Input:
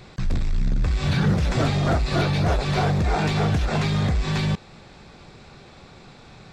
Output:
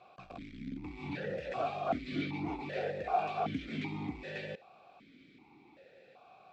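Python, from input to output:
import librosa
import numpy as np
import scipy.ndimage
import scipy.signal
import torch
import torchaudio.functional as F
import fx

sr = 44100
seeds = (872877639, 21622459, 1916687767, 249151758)

y = fx.vowel_held(x, sr, hz=2.6)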